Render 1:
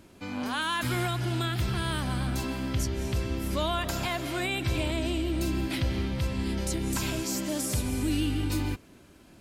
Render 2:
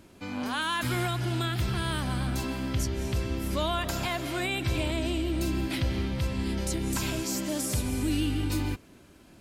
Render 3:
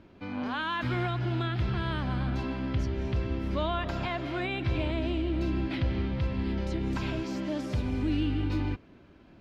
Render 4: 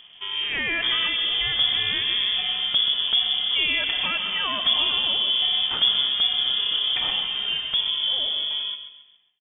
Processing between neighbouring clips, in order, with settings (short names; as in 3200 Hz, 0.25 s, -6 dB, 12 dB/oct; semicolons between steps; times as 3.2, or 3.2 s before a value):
nothing audible
air absorption 260 m
ending faded out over 1.98 s; inverted band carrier 3400 Hz; feedback echo 0.136 s, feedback 39%, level -10 dB; gain +6 dB